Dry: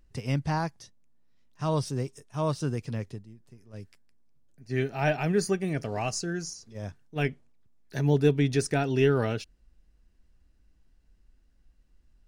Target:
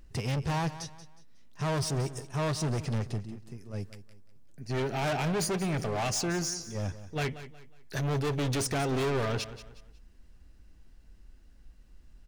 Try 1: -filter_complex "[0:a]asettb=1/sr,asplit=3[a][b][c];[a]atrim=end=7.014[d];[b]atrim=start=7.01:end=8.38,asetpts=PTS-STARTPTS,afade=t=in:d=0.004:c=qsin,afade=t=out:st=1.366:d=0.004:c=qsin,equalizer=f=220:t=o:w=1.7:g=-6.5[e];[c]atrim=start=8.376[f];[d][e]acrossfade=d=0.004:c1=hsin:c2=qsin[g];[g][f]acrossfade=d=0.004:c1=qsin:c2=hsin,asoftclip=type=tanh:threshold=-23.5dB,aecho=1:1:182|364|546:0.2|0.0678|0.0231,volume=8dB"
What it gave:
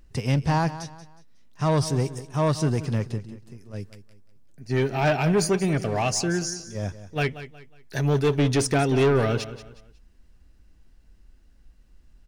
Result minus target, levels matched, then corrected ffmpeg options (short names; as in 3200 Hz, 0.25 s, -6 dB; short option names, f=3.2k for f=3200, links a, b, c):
soft clip: distortion -7 dB
-filter_complex "[0:a]asettb=1/sr,asplit=3[a][b][c];[a]atrim=end=7.014[d];[b]atrim=start=7.01:end=8.38,asetpts=PTS-STARTPTS,afade=t=in:d=0.004:c=qsin,afade=t=out:st=1.366:d=0.004:c=qsin,equalizer=f=220:t=o:w=1.7:g=-6.5[e];[c]atrim=start=8.376[f];[d][e]acrossfade=d=0.004:c1=hsin:c2=qsin[g];[g][f]acrossfade=d=0.004:c1=qsin:c2=hsin,asoftclip=type=tanh:threshold=-35.5dB,aecho=1:1:182|364|546:0.2|0.0678|0.0231,volume=8dB"